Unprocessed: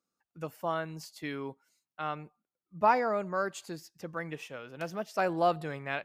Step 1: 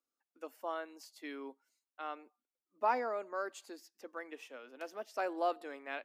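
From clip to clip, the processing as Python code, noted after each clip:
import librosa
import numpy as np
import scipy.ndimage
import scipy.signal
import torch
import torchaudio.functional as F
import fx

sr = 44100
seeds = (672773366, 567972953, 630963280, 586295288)

y = scipy.signal.sosfilt(scipy.signal.ellip(4, 1.0, 40, 250.0, 'highpass', fs=sr, output='sos'), x)
y = F.gain(torch.from_numpy(y), -6.5).numpy()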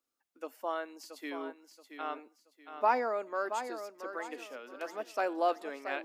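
y = fx.echo_feedback(x, sr, ms=677, feedback_pct=32, wet_db=-9.0)
y = F.gain(torch.from_numpy(y), 4.0).numpy()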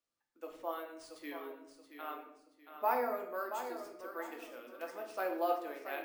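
y = np.repeat(x[::3], 3)[:len(x)]
y = fx.room_shoebox(y, sr, seeds[0], volume_m3=180.0, walls='mixed', distance_m=0.77)
y = F.gain(torch.from_numpy(y), -6.5).numpy()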